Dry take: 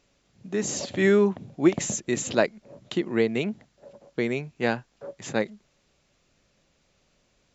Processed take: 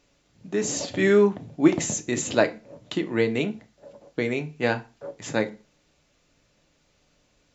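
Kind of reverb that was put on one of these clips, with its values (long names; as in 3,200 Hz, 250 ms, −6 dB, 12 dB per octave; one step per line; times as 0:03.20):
feedback delay network reverb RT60 0.32 s, low-frequency decay 1.1×, high-frequency decay 0.9×, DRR 7 dB
level +1 dB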